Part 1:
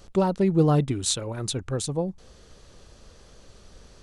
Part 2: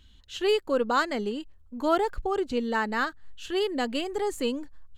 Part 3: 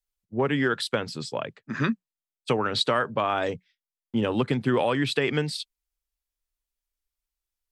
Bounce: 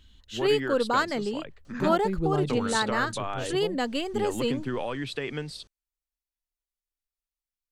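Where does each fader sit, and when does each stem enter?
−8.5, 0.0, −8.0 decibels; 1.65, 0.00, 0.00 seconds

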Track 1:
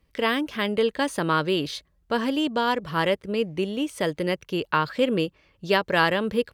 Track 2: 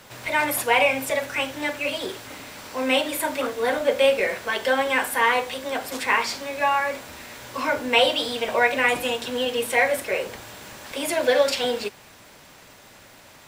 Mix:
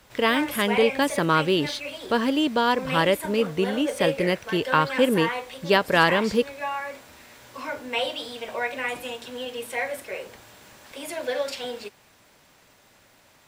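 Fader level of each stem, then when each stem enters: +2.0, −8.5 decibels; 0.00, 0.00 seconds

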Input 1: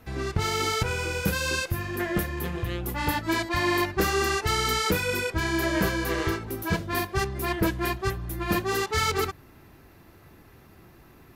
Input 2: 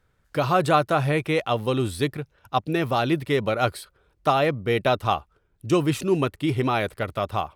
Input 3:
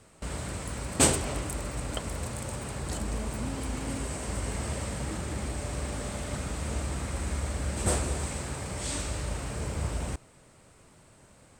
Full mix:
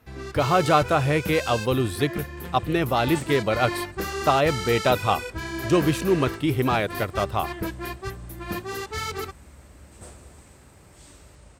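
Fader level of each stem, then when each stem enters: −5.5, +0.5, −17.0 decibels; 0.00, 0.00, 2.15 seconds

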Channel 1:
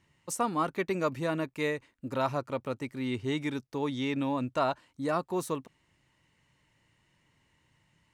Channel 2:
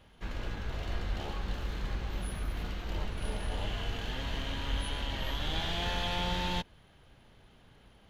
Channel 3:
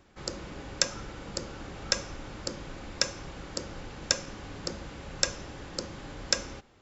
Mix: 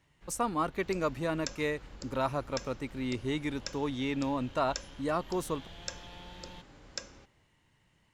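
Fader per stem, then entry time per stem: −1.5, −16.5, −13.0 decibels; 0.00, 0.00, 0.65 seconds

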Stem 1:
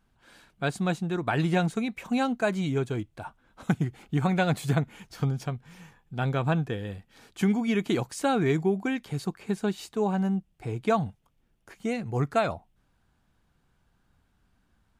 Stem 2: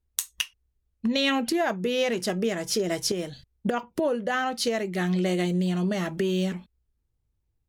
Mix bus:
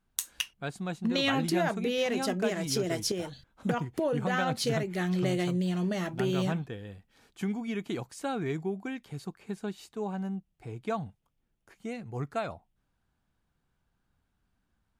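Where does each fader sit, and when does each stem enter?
−8.0, −4.0 decibels; 0.00, 0.00 seconds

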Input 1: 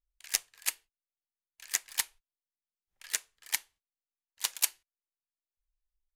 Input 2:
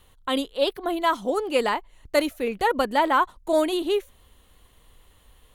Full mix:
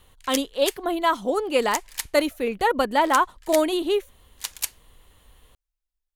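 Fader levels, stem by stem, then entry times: 0.0, +1.0 decibels; 0.00, 0.00 seconds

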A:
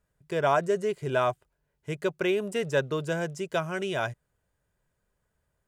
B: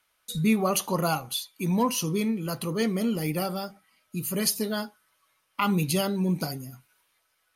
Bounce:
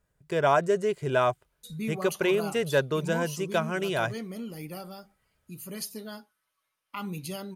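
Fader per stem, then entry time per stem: +1.5, −11.0 decibels; 0.00, 1.35 seconds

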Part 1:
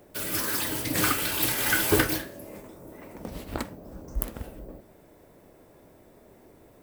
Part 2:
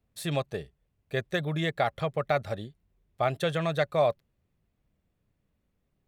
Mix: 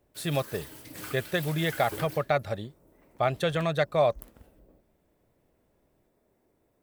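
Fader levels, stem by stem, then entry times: −16.5, +1.0 decibels; 0.00, 0.00 seconds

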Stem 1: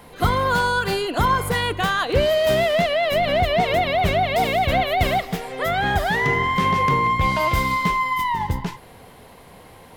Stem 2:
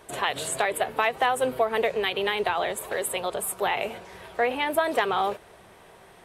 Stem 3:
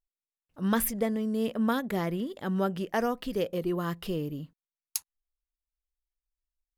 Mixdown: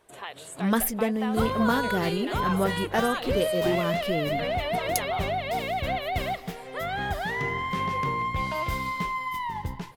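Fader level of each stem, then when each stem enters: −9.0, −12.0, +2.5 decibels; 1.15, 0.00, 0.00 seconds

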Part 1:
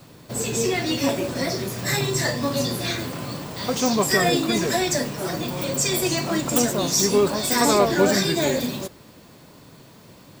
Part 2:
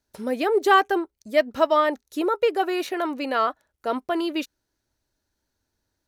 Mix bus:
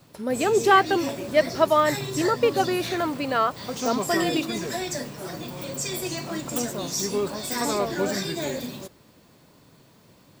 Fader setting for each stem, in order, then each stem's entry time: −7.5, 0.0 decibels; 0.00, 0.00 seconds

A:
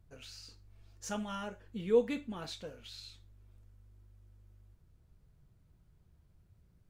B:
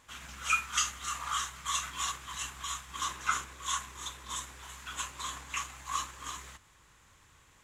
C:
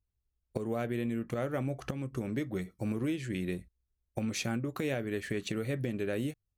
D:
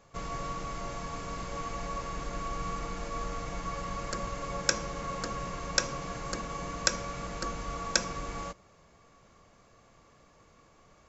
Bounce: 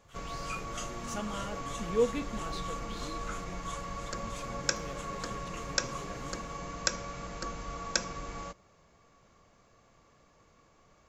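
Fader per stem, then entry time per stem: 0.0, −13.0, −14.5, −3.0 decibels; 0.05, 0.00, 0.00, 0.00 seconds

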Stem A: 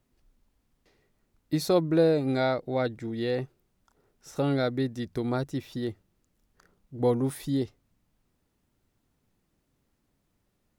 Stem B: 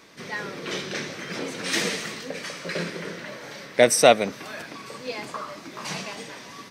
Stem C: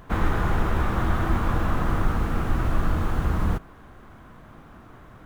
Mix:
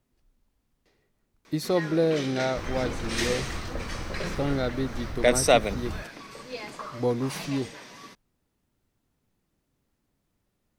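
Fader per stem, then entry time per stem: −1.5, −4.5, −12.5 decibels; 0.00, 1.45, 2.45 seconds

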